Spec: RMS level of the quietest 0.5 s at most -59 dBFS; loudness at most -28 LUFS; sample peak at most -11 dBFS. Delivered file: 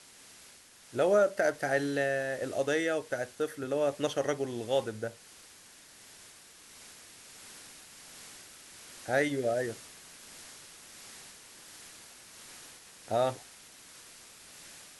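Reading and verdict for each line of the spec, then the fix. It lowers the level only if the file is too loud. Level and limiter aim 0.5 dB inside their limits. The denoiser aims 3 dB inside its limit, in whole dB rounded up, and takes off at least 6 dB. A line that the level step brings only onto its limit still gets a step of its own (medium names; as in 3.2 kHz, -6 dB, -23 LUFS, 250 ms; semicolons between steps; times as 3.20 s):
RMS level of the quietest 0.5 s -55 dBFS: fail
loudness -31.0 LUFS: pass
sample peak -15.0 dBFS: pass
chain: noise reduction 7 dB, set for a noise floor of -55 dBFS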